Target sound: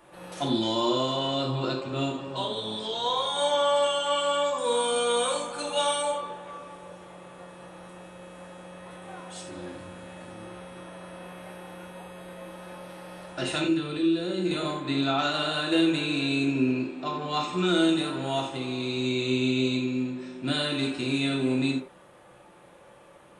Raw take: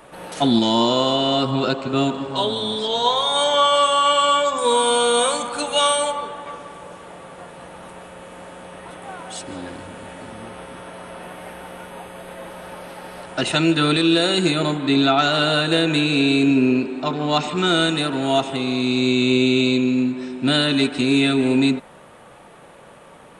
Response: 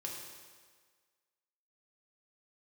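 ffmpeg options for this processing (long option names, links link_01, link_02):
-filter_complex "[0:a]asettb=1/sr,asplit=3[link_01][link_02][link_03];[link_01]atrim=end=13.644[link_04];[link_02]atrim=start=13.64:end=14.51,asetpts=PTS-STARTPTS,afade=type=in:duration=0.004:curve=qsin,afade=type=out:start_time=0.866:duration=0.004:curve=qsin,acrossover=split=480|5300[link_05][link_06][link_07];[link_05]acompressor=threshold=-20dB:ratio=4[link_08];[link_06]acompressor=threshold=-30dB:ratio=4[link_09];[link_07]acompressor=threshold=-49dB:ratio=4[link_10];[link_08][link_09][link_10]amix=inputs=3:normalize=0[link_11];[link_03]atrim=start=14.506[link_12];[link_04][link_11]acrossfade=duration=0.004:curve1=hsin:curve2=qsin[link_13];[link_13][link_12]acrossfade=duration=0.004:curve1=qsin:curve2=hsin[link_14];[1:a]atrim=start_sample=2205,atrim=end_sample=4410[link_15];[link_14][link_15]afir=irnorm=-1:irlink=0,volume=-6.5dB"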